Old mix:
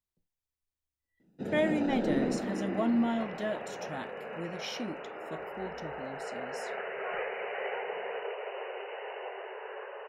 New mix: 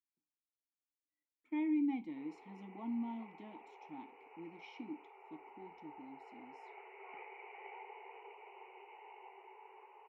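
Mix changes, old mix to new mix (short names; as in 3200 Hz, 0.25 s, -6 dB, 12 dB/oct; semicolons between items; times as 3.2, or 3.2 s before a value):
first sound: muted; master: add vowel filter u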